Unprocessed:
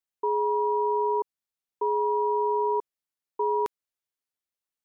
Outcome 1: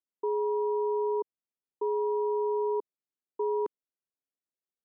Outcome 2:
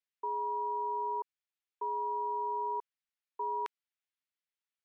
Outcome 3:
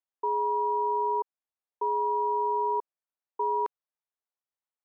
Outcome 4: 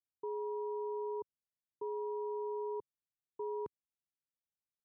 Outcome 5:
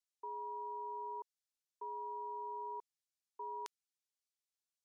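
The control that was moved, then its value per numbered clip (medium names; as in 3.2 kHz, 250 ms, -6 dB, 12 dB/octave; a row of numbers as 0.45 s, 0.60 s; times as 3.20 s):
band-pass filter, frequency: 320 Hz, 2.3 kHz, 840 Hz, 110 Hz, 6 kHz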